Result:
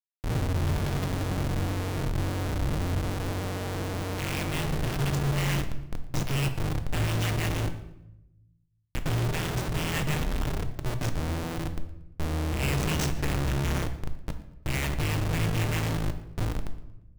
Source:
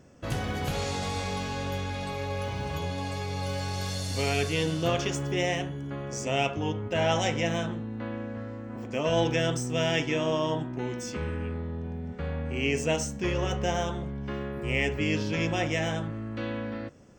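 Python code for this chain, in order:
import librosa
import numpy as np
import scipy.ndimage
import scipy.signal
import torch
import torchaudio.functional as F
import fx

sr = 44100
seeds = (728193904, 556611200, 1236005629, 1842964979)

p1 = scipy.signal.sosfilt(scipy.signal.ellip(3, 1.0, 50, [140.0, 1600.0], 'bandstop', fs=sr, output='sos'), x)
p2 = fx.rider(p1, sr, range_db=3, speed_s=2.0)
p3 = p1 + F.gain(torch.from_numpy(p2), 1.0).numpy()
p4 = fx.schmitt(p3, sr, flips_db=-25.0)
p5 = p4 + fx.echo_thinned(p4, sr, ms=116, feedback_pct=31, hz=420.0, wet_db=-21.0, dry=0)
p6 = fx.room_shoebox(p5, sr, seeds[0], volume_m3=280.0, walls='mixed', distance_m=0.48)
y = fx.env_flatten(p6, sr, amount_pct=50, at=(12.62, 13.79))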